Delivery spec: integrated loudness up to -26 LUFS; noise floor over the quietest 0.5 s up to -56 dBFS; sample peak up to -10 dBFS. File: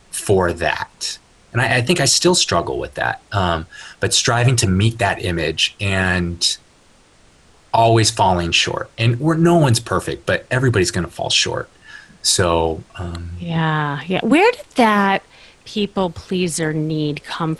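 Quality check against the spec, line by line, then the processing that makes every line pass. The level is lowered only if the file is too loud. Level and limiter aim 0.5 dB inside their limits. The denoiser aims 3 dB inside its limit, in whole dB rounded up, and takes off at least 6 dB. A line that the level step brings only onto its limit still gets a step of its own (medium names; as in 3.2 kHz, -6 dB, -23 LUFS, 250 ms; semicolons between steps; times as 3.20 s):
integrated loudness -17.5 LUFS: fail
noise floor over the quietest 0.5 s -51 dBFS: fail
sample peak -3.5 dBFS: fail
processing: trim -9 dB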